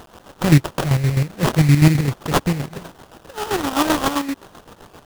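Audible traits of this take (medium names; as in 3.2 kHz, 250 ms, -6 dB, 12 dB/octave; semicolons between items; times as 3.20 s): a quantiser's noise floor 8-bit, dither triangular; chopped level 7.7 Hz, depth 60%, duty 45%; aliases and images of a low sample rate 2.2 kHz, jitter 20%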